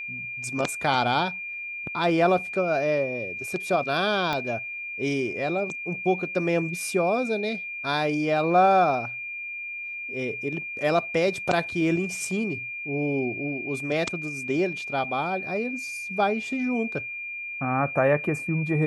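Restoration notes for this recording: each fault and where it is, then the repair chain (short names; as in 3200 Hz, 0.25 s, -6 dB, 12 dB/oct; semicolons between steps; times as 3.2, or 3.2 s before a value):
tone 2400 Hz -32 dBFS
4.33 pop -14 dBFS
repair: de-click; notch 2400 Hz, Q 30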